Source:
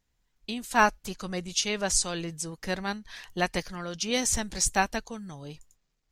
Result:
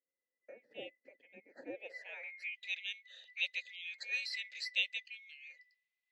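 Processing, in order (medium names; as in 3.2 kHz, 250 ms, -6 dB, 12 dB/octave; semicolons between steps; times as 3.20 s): split-band scrambler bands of 2 kHz; vowel filter e; band-pass sweep 250 Hz -> 4.1 kHz, 1.63–2.66 s; trim +10.5 dB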